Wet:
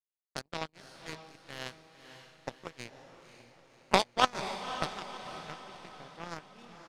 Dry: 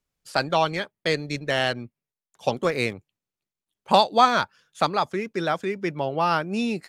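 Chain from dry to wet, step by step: harmony voices -3 st -12 dB; power-law waveshaper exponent 3; peaking EQ 160 Hz +3.5 dB 2 oct; echo that smears into a reverb 531 ms, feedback 51%, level -10 dB

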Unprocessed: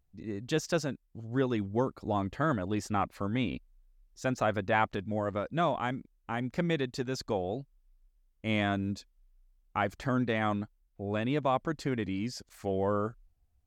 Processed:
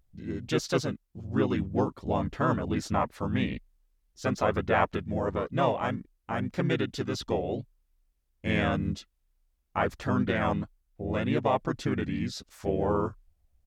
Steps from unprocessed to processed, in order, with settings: harmony voices -4 st -1 dB, -3 st -10 dB

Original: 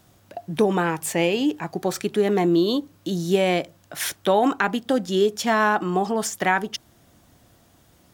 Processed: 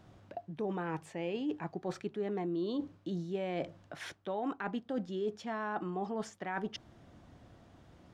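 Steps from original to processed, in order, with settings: reverse; compression 6:1, threshold -33 dBFS, peak gain reduction 18 dB; reverse; tape spacing loss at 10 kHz 22 dB

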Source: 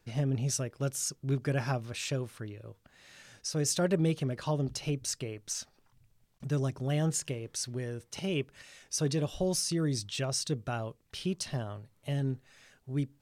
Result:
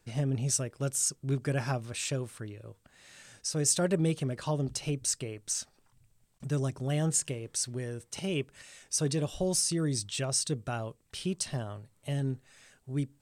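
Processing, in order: peaking EQ 8.3 kHz +9 dB 0.43 oct

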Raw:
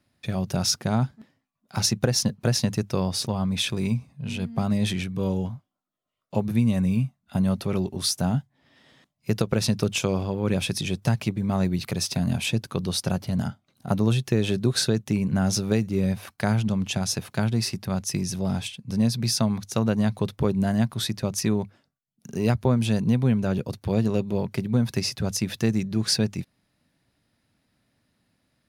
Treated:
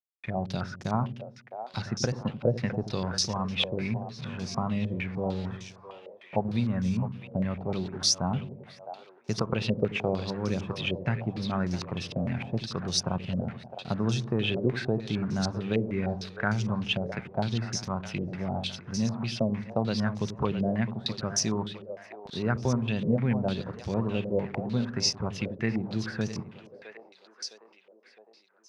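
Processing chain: small samples zeroed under -38.5 dBFS; two-band feedback delay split 420 Hz, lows 86 ms, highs 660 ms, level -9.5 dB; step-sequenced low-pass 6.6 Hz 540–5800 Hz; trim -6.5 dB

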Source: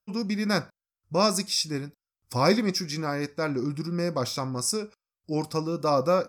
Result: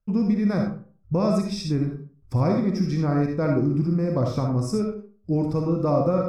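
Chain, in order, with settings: tilt EQ -4.5 dB/octave; compression, threshold -19 dBFS, peak gain reduction 10 dB; algorithmic reverb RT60 0.43 s, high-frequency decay 0.55×, pre-delay 20 ms, DRR 1.5 dB

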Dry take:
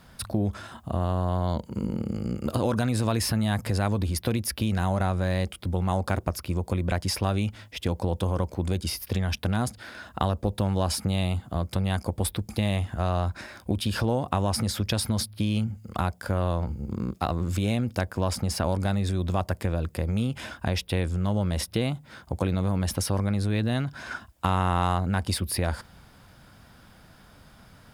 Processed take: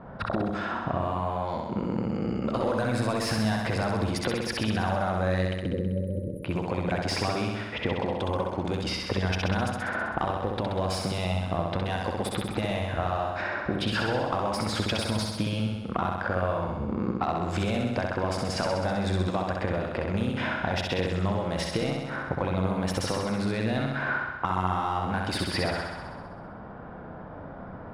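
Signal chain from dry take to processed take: level-controlled noise filter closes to 680 Hz, open at -21.5 dBFS; overdrive pedal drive 17 dB, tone 1.5 kHz, clips at -7 dBFS; compression 5:1, threshold -36 dBFS, peak gain reduction 17 dB; spectral selection erased 5.53–6.44 s, 600–9100 Hz; on a send: flutter echo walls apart 11.1 m, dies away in 1.2 s; on the sum: trim +8 dB

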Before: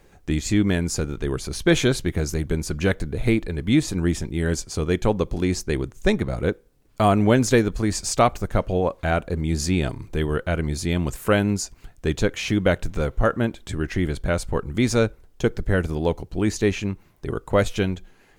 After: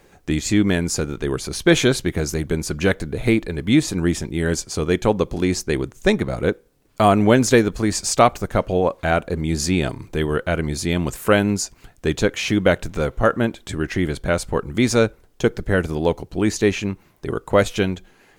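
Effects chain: bass shelf 94 Hz -9.5 dB; trim +4 dB

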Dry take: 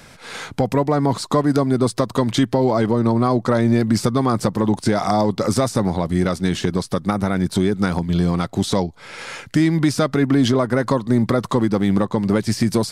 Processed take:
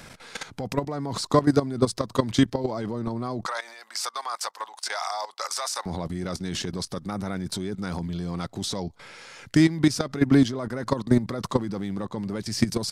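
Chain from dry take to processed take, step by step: 3.46–5.86 s: high-pass 810 Hz 24 dB/octave; dynamic bell 5.4 kHz, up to +5 dB, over -44 dBFS, Q 1.4; level held to a coarse grid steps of 15 dB

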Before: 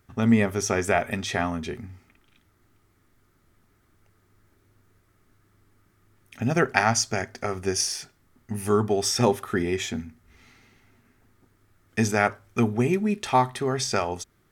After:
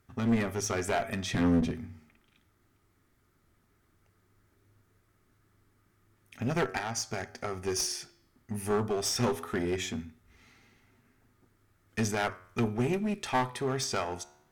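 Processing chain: 1.32–1.72 s: graphic EQ 125/250/500 Hz +10/+12/-10 dB; 6.66–7.65 s: compression 6:1, threshold -23 dBFS, peak gain reduction 8 dB; flange 0.18 Hz, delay 7.4 ms, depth 7.6 ms, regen +89%; one-sided clip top -28 dBFS

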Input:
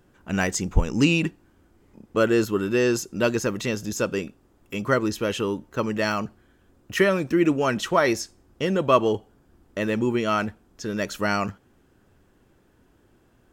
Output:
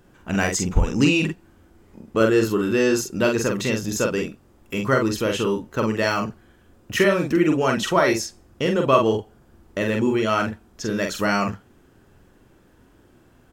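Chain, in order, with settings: in parallel at -2 dB: compression, threshold -28 dBFS, peak gain reduction 15.5 dB; on the sum: doubling 45 ms -4 dB; trim -1 dB

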